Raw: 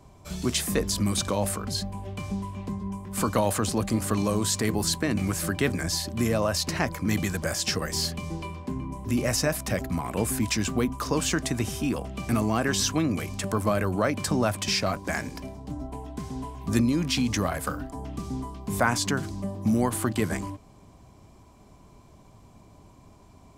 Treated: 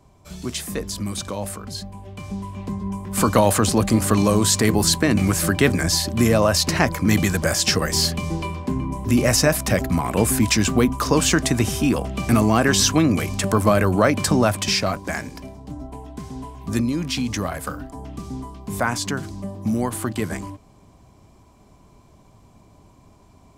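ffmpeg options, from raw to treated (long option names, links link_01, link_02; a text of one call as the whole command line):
ffmpeg -i in.wav -af "volume=8dB,afade=type=in:start_time=2.1:duration=1.23:silence=0.316228,afade=type=out:start_time=14.16:duration=1.13:silence=0.446684" out.wav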